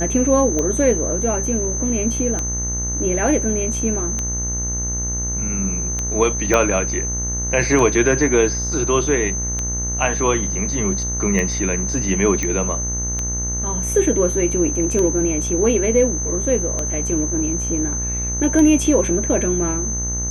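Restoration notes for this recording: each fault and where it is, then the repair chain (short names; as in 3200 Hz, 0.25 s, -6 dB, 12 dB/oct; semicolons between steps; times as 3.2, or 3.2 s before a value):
buzz 60 Hz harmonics 35 -26 dBFS
tick 33 1/3 rpm -10 dBFS
tone 6200 Hz -23 dBFS
6.54 pop -3 dBFS
12.43 pop -9 dBFS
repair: de-click; de-hum 60 Hz, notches 35; notch 6200 Hz, Q 30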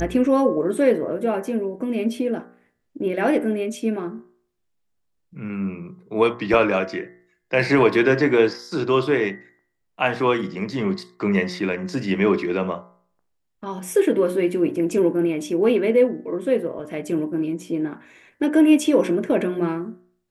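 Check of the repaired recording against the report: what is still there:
6.54 pop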